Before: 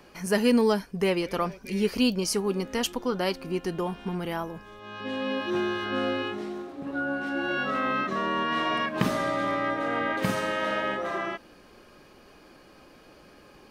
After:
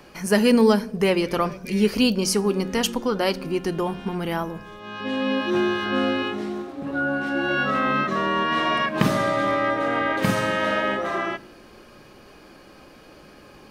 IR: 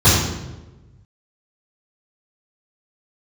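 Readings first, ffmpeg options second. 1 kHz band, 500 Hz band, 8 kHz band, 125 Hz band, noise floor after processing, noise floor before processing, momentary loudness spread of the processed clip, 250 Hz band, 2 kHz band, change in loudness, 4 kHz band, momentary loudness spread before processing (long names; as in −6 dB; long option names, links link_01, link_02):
+5.0 dB, +5.0 dB, +5.0 dB, +6.0 dB, −48 dBFS, −54 dBFS, 9 LU, +5.5 dB, +5.0 dB, +5.0 dB, +5.0 dB, 9 LU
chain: -filter_complex "[0:a]asplit=2[link_01][link_02];[1:a]atrim=start_sample=2205,asetrate=61740,aresample=44100[link_03];[link_02][link_03]afir=irnorm=-1:irlink=0,volume=-41dB[link_04];[link_01][link_04]amix=inputs=2:normalize=0,volume=5dB"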